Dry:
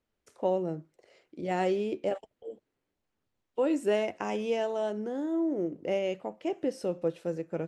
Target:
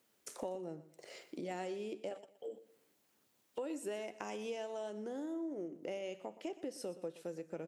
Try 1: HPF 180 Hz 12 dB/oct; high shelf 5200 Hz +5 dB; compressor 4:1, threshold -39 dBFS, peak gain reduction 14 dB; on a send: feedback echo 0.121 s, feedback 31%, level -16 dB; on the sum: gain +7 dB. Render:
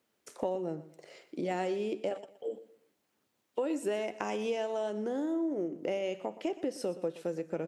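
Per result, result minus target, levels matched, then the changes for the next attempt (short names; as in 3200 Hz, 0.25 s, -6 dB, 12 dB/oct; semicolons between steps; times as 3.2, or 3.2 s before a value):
compressor: peak gain reduction -9 dB; 8000 Hz band -6.0 dB
change: compressor 4:1, threshold -50.5 dBFS, peak gain reduction 22.5 dB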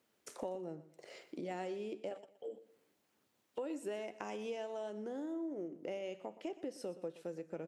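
8000 Hz band -4.5 dB
change: high shelf 5200 Hz +12.5 dB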